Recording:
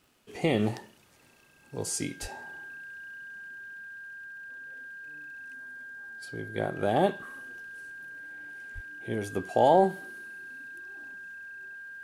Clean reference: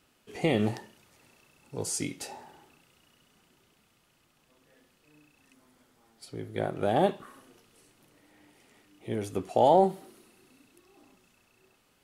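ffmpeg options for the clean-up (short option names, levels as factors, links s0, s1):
-filter_complex "[0:a]adeclick=t=4,bandreject=f=1600:w=30,asplit=3[s0][s1][s2];[s0]afade=t=out:st=2.21:d=0.02[s3];[s1]highpass=f=140:w=0.5412,highpass=f=140:w=1.3066,afade=t=in:st=2.21:d=0.02,afade=t=out:st=2.33:d=0.02[s4];[s2]afade=t=in:st=2.33:d=0.02[s5];[s3][s4][s5]amix=inputs=3:normalize=0,asplit=3[s6][s7][s8];[s6]afade=t=out:st=8.74:d=0.02[s9];[s7]highpass=f=140:w=0.5412,highpass=f=140:w=1.3066,afade=t=in:st=8.74:d=0.02,afade=t=out:st=8.86:d=0.02[s10];[s8]afade=t=in:st=8.86:d=0.02[s11];[s9][s10][s11]amix=inputs=3:normalize=0"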